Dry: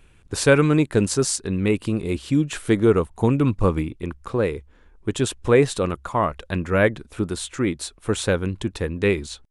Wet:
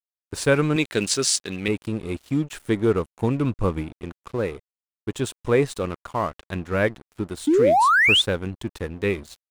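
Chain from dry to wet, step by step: 0.76–1.68 weighting filter D; 7.47–8.22 painted sound rise 280–3700 Hz -13 dBFS; crossover distortion -37 dBFS; gain -3 dB

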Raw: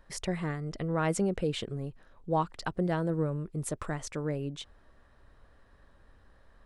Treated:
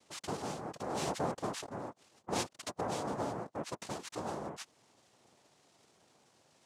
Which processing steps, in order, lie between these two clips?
in parallel at 0 dB: compressor, threshold -42 dBFS, peak gain reduction 17.5 dB; on the sum: noise vocoder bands 2; gain -8.5 dB

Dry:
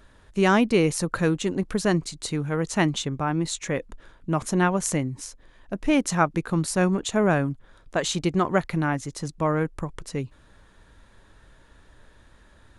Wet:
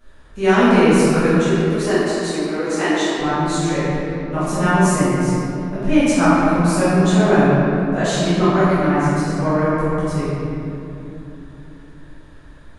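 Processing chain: 1.36–3.18 Chebyshev high-pass 320 Hz, order 3; reverb RT60 3.2 s, pre-delay 9 ms, DRR -14.5 dB; gain -7.5 dB

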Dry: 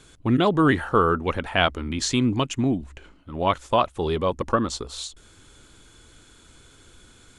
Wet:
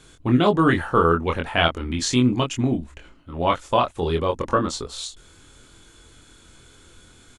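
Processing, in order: doubler 24 ms -4 dB

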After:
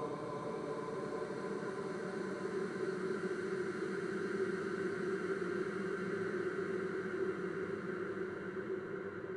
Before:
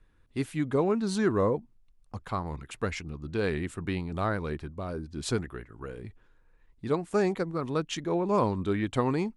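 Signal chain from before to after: level quantiser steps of 23 dB; dynamic EQ 2600 Hz, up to +7 dB, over -55 dBFS, Q 0.85; Paulstretch 15×, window 1.00 s, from 0.91; gain -4.5 dB

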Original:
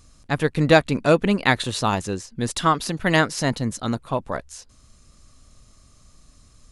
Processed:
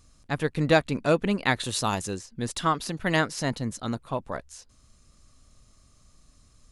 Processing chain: 1.63–2.19 high shelf 5800 Hz +10.5 dB; gain -5.5 dB

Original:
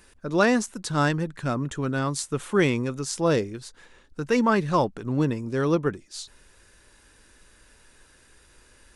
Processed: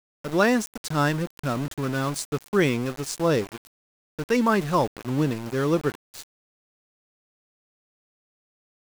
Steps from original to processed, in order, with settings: sample gate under -31.5 dBFS

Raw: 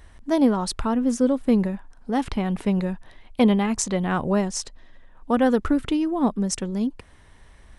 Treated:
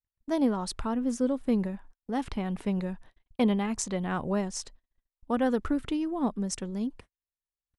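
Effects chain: gate -40 dBFS, range -47 dB; gain -7 dB

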